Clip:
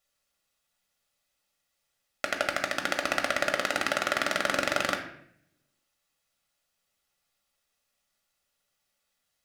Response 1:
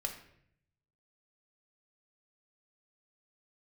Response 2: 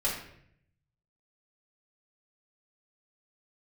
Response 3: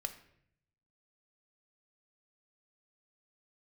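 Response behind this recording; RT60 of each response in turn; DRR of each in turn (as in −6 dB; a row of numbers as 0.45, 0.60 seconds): 1; 0.65, 0.65, 0.70 seconds; 2.5, −7.0, 7.0 decibels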